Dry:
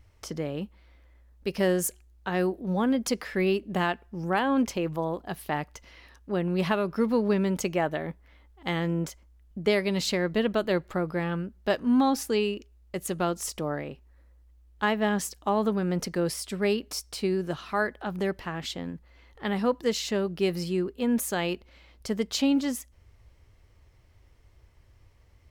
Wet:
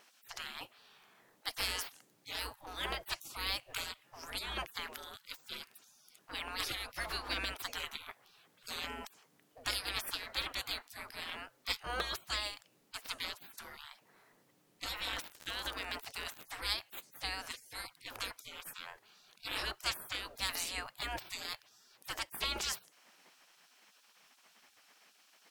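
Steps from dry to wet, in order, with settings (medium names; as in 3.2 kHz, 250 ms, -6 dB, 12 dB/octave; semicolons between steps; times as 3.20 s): spectral gate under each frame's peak -30 dB weak; 15.13–16.44 s: crackle 59 per s -44 dBFS; trim +10 dB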